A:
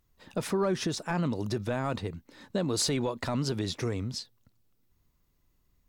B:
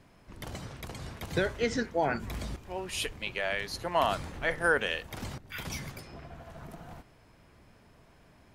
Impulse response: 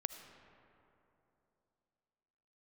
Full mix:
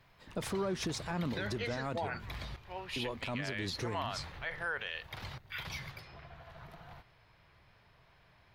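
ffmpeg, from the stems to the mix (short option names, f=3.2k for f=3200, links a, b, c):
-filter_complex "[0:a]volume=-4dB,asplit=3[a][b][c];[a]atrim=end=2.45,asetpts=PTS-STARTPTS,afade=t=out:st=2.446:d=0.004:c=hsin[d];[b]atrim=start=2.45:end=2.96,asetpts=PTS-STARTPTS,volume=0[e];[c]atrim=start=2.96,asetpts=PTS-STARTPTS,afade=t=in:d=0.004:c=hsin[f];[d][e][f]concat=n=3:v=0:a=1[g];[1:a]equalizer=f=125:t=o:w=1:g=5,equalizer=f=250:t=o:w=1:g=-10,equalizer=f=1k:t=o:w=1:g=4,equalizer=f=2k:t=o:w=1:g=5,equalizer=f=4k:t=o:w=1:g=9,equalizer=f=8k:t=o:w=1:g=-11,volume=-7dB[h];[g][h]amix=inputs=2:normalize=0,alimiter=level_in=3dB:limit=-24dB:level=0:latency=1:release=72,volume=-3dB"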